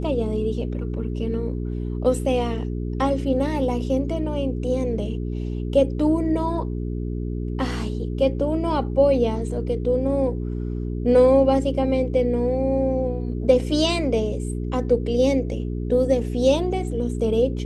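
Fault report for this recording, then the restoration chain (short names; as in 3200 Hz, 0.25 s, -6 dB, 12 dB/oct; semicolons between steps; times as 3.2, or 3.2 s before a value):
hum 60 Hz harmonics 7 -27 dBFS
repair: de-hum 60 Hz, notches 7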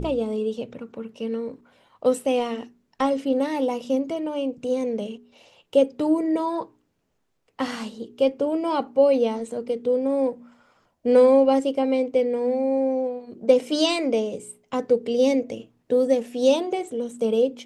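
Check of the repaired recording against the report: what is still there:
none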